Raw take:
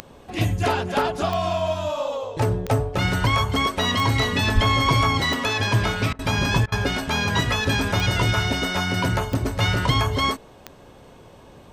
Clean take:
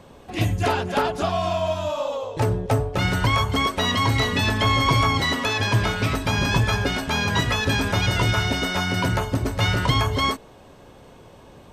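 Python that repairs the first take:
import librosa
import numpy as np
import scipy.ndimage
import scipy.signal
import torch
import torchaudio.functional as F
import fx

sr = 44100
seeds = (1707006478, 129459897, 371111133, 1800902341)

y = fx.fix_declick_ar(x, sr, threshold=10.0)
y = fx.fix_deplosive(y, sr, at_s=(4.54,))
y = fx.fix_interpolate(y, sr, at_s=(6.13, 6.66), length_ms=59.0)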